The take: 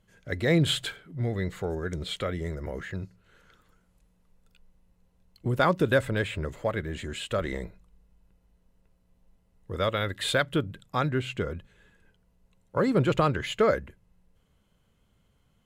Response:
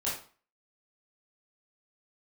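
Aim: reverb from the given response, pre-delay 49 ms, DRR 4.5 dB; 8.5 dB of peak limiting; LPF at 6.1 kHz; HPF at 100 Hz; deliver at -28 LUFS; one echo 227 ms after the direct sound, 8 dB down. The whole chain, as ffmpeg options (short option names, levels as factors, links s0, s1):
-filter_complex "[0:a]highpass=100,lowpass=6100,alimiter=limit=0.126:level=0:latency=1,aecho=1:1:227:0.398,asplit=2[s0][s1];[1:a]atrim=start_sample=2205,adelay=49[s2];[s1][s2]afir=irnorm=-1:irlink=0,volume=0.316[s3];[s0][s3]amix=inputs=2:normalize=0,volume=1.19"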